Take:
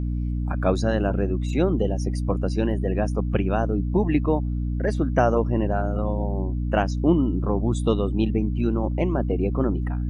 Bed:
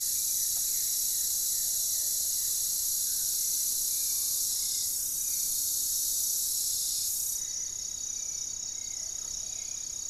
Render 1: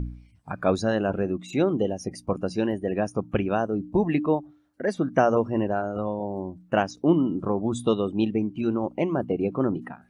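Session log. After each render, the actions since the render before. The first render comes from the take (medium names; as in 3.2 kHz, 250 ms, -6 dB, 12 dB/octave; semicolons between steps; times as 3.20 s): de-hum 60 Hz, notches 5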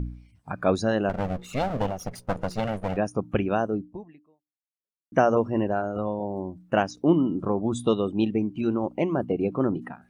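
1.09–2.97 s: comb filter that takes the minimum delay 1.4 ms; 3.75–5.12 s: fade out exponential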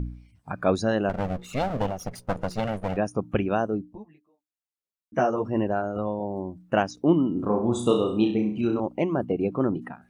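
3.95–5.45 s: three-phase chorus; 7.33–8.80 s: flutter echo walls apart 5.7 m, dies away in 0.47 s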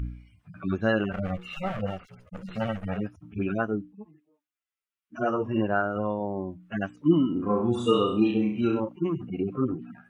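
harmonic-percussive separation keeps harmonic; high-order bell 1.9 kHz +9.5 dB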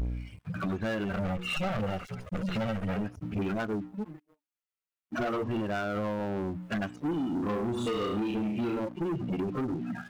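compression 6:1, threshold -35 dBFS, peak gain reduction 18.5 dB; waveshaping leveller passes 3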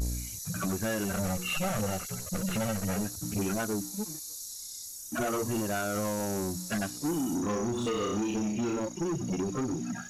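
add bed -11.5 dB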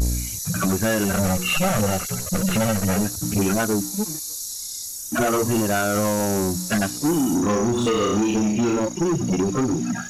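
trim +10 dB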